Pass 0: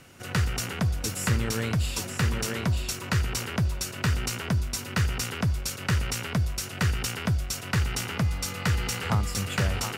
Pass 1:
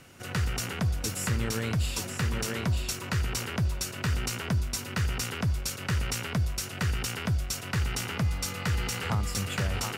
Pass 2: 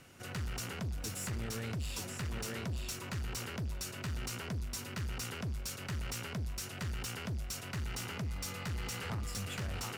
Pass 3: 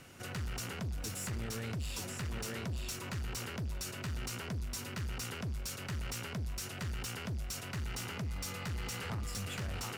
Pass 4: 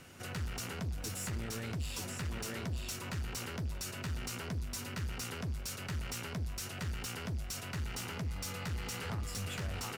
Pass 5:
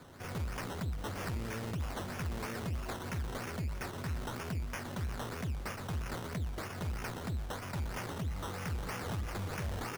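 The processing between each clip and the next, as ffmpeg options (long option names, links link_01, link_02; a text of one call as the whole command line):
ffmpeg -i in.wav -af "alimiter=limit=-18dB:level=0:latency=1:release=83,volume=-1dB" out.wav
ffmpeg -i in.wav -af "asoftclip=type=tanh:threshold=-29dB,volume=-5dB" out.wav
ffmpeg -i in.wav -af "alimiter=level_in=13.5dB:limit=-24dB:level=0:latency=1,volume=-13.5dB,volume=3dB" out.wav
ffmpeg -i in.wav -filter_complex "[0:a]asplit=2[link_01][link_02];[link_02]adelay=12,volume=-11.5dB[link_03];[link_01][link_03]amix=inputs=2:normalize=0" out.wav
ffmpeg -i in.wav -af "acrusher=samples=15:mix=1:aa=0.000001:lfo=1:lforange=9:lforate=3.1,volume=1dB" out.wav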